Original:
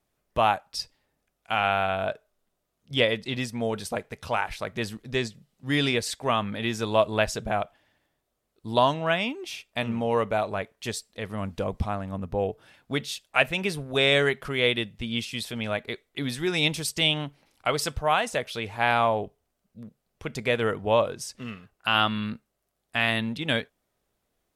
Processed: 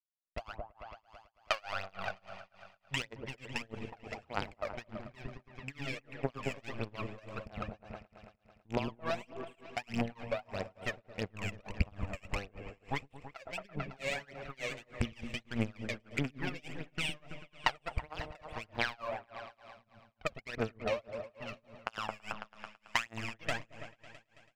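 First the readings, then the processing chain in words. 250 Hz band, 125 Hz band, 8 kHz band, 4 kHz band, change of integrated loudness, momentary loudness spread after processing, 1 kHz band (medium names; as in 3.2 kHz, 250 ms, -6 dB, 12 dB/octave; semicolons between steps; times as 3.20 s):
-11.5 dB, -9.5 dB, -14.5 dB, -15.0 dB, -13.0 dB, 15 LU, -14.0 dB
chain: rattle on loud lows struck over -31 dBFS, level -18 dBFS; steep low-pass 3 kHz 48 dB/octave; hum notches 60/120 Hz; compression 12:1, threshold -31 dBFS, peak gain reduction 16.5 dB; power-law waveshaper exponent 2; phaser 1.6 Hz, delay 1.9 ms, feedback 77%; delay with an opening low-pass 110 ms, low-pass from 400 Hz, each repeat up 1 oct, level -6 dB; tremolo 3.4 Hz, depth 97%; trim +9 dB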